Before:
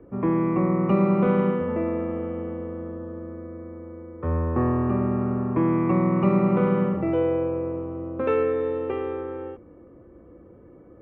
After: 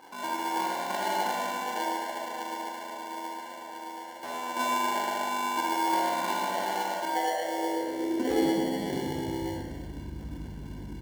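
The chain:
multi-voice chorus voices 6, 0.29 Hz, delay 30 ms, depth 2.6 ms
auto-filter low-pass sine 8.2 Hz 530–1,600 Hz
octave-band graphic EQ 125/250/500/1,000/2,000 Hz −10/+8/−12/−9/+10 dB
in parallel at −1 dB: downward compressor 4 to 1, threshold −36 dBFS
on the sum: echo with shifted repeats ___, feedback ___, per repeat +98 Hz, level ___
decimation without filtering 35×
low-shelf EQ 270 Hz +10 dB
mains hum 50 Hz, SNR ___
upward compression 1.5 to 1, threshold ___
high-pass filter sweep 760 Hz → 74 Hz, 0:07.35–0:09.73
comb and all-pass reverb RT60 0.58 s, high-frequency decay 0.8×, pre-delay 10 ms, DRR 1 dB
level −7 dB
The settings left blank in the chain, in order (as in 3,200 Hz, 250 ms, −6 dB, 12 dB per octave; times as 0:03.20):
146 ms, 36%, −11.5 dB, 18 dB, −22 dBFS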